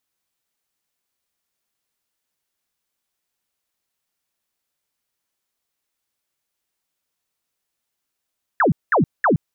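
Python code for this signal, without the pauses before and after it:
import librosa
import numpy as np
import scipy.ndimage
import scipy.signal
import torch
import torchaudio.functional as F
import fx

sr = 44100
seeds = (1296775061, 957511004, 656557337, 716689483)

y = fx.laser_zaps(sr, level_db=-12.5, start_hz=1900.0, end_hz=120.0, length_s=0.12, wave='sine', shots=3, gap_s=0.2)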